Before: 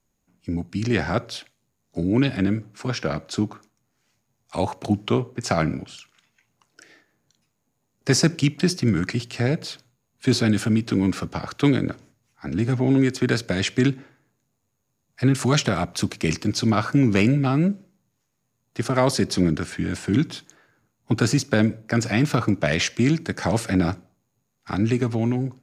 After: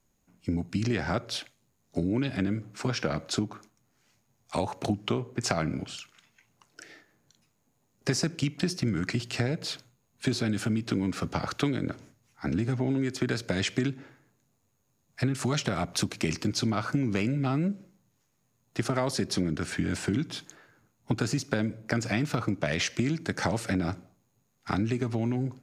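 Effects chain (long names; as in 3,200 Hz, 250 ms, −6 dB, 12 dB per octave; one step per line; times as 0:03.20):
downward compressor, threshold −26 dBFS, peak gain reduction 13 dB
level +1.5 dB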